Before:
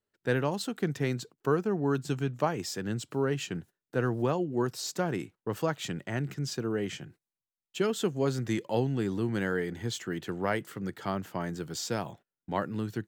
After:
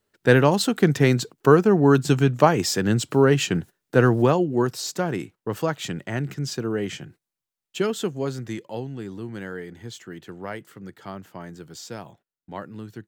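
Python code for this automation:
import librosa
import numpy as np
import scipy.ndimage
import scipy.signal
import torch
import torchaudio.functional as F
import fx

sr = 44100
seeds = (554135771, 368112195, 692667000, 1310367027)

y = fx.gain(x, sr, db=fx.line((4.0, 12.0), (4.91, 5.0), (7.78, 5.0), (8.81, -4.0)))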